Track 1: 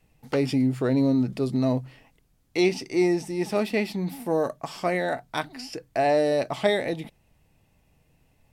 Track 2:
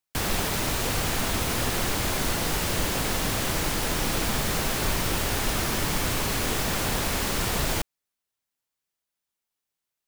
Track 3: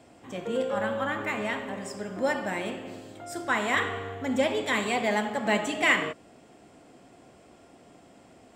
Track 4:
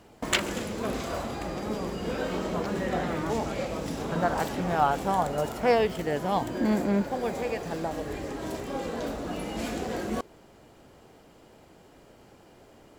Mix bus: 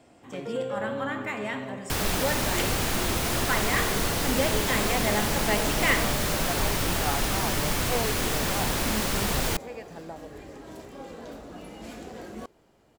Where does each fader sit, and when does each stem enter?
-17.5 dB, -0.5 dB, -2.0 dB, -8.5 dB; 0.00 s, 1.75 s, 0.00 s, 2.25 s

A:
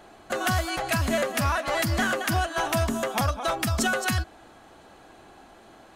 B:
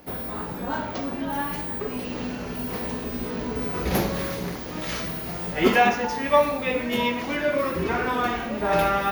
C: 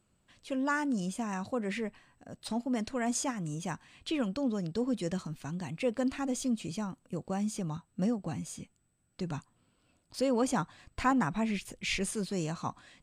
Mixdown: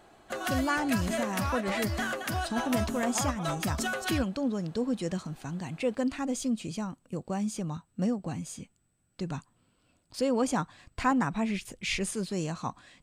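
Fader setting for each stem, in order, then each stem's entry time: -7.0 dB, mute, +1.5 dB; 0.00 s, mute, 0.00 s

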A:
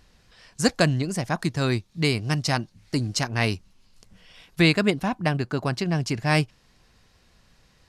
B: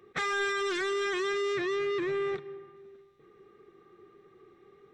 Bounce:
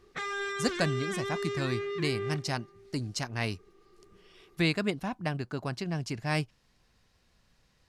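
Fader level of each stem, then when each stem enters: -8.5 dB, -4.5 dB; 0.00 s, 0.00 s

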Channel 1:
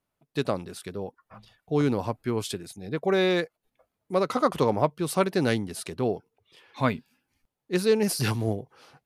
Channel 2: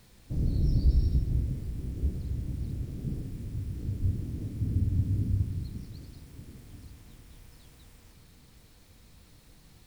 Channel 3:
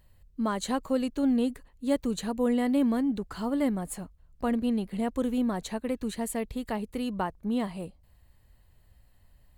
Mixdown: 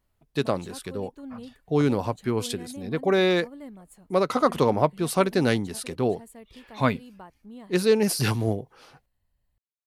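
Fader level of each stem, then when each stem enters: +2.0 dB, mute, -15.0 dB; 0.00 s, mute, 0.00 s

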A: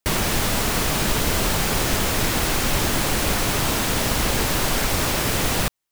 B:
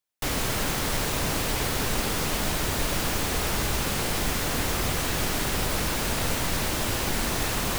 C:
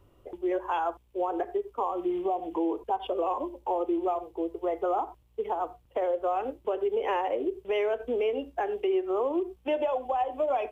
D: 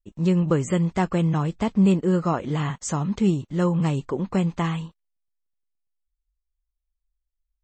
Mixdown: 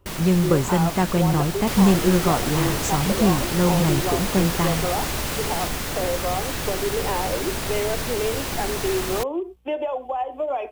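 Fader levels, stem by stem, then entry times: -9.5 dB, -1.0 dB, +1.5 dB, +1.5 dB; 0.00 s, 1.45 s, 0.00 s, 0.00 s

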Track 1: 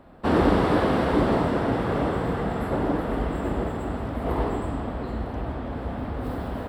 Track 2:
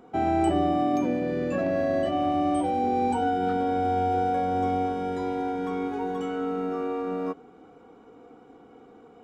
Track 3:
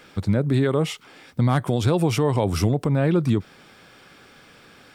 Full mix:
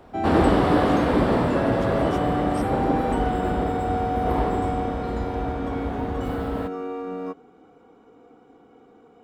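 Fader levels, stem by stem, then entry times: +1.0 dB, -1.5 dB, -17.0 dB; 0.00 s, 0.00 s, 0.00 s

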